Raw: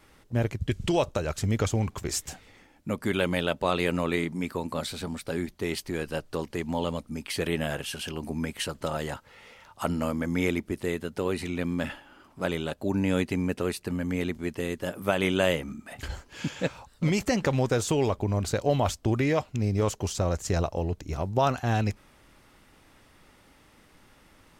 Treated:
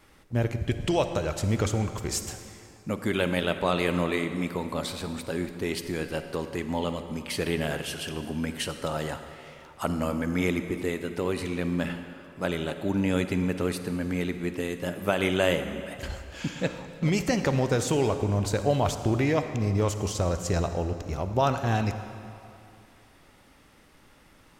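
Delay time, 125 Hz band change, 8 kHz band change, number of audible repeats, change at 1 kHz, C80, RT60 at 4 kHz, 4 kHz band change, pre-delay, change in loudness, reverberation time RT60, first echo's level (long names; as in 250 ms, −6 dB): no echo audible, +0.5 dB, +0.5 dB, no echo audible, +0.5 dB, 9.5 dB, 2.0 s, +0.5 dB, 39 ms, +0.5 dB, 2.6 s, no echo audible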